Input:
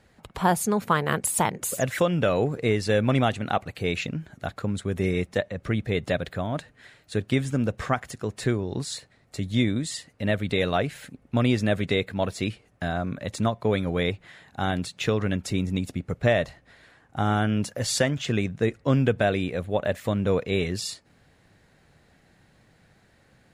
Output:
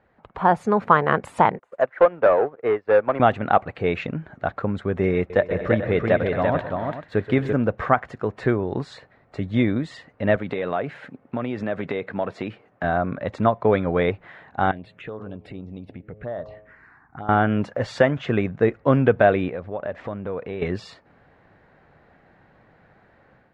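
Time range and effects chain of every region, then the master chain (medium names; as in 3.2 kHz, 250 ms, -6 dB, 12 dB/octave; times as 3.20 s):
1.59–3.20 s: three-band isolator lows -15 dB, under 360 Hz, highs -16 dB, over 2 kHz + waveshaping leveller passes 2 + upward expansion 2.5:1, over -34 dBFS
5.17–7.53 s: careless resampling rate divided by 2×, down filtered, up zero stuff + multi-tap echo 128/130/206/258/340/438 ms -18/-16/-15.5/-19/-4/-12 dB
10.36–12.84 s: high-pass 130 Hz + compression, threshold -26 dBFS
14.71–17.29 s: touch-sensitive phaser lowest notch 510 Hz, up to 2.5 kHz, full sweep at -19.5 dBFS + de-hum 106.1 Hz, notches 11 + compression 3:1, threshold -39 dBFS
19.49–20.62 s: compression 3:1, threshold -34 dBFS + decimation joined by straight lines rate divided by 3×
whole clip: low-pass 1.3 kHz 12 dB/octave; bass shelf 400 Hz -11.5 dB; level rider gain up to 7.5 dB; trim +4 dB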